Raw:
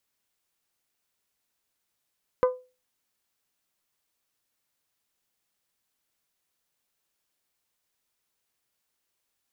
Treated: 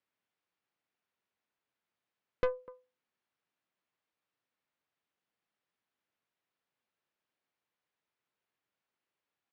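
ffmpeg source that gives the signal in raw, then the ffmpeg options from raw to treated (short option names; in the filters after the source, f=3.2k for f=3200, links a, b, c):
-f lavfi -i "aevalsrc='0.178*pow(10,-3*t/0.31)*sin(2*PI*505*t)+0.0794*pow(10,-3*t/0.191)*sin(2*PI*1010*t)+0.0355*pow(10,-3*t/0.168)*sin(2*PI*1212*t)+0.0158*pow(10,-3*t/0.144)*sin(2*PI*1515*t)+0.00708*pow(10,-3*t/0.117)*sin(2*PI*2020*t)':d=0.89:s=44100"
-af "highpass=110,lowpass=2.7k,aecho=1:1:249:0.0708,aeval=exprs='(tanh(14.1*val(0)+0.65)-tanh(0.65))/14.1':c=same"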